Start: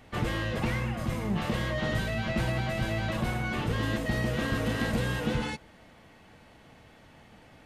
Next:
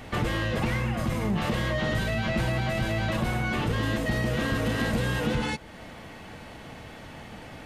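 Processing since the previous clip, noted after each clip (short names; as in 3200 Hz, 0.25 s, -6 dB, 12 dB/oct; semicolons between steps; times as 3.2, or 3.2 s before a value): in parallel at +1 dB: limiter -25.5 dBFS, peak gain reduction 7 dB; on the sum: compressor 1.5:1, threshold -41 dBFS, peak gain reduction 7.5 dB; gain +5 dB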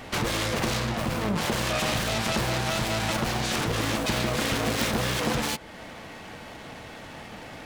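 self-modulated delay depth 0.62 ms; low shelf 190 Hz -7 dB; gain +3.5 dB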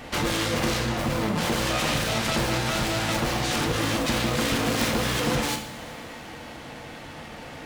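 two-slope reverb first 0.56 s, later 3.6 s, from -15 dB, DRR 4 dB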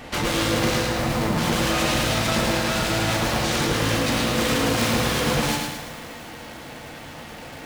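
lo-fi delay 0.109 s, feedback 55%, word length 7-bit, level -3 dB; gain +1 dB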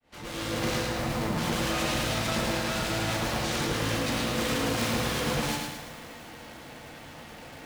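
opening faded in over 0.72 s; gain -6.5 dB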